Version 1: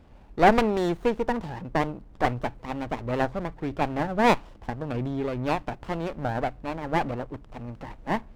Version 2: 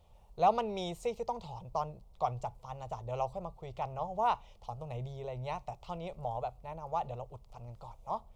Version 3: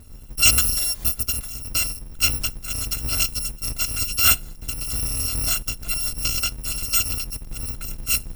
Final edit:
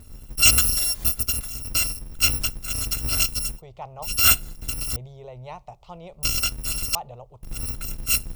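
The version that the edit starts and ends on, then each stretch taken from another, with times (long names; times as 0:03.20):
3
0:03.59–0:04.05: punch in from 2, crossfade 0.06 s
0:04.96–0:06.23: punch in from 2
0:06.95–0:07.43: punch in from 2
not used: 1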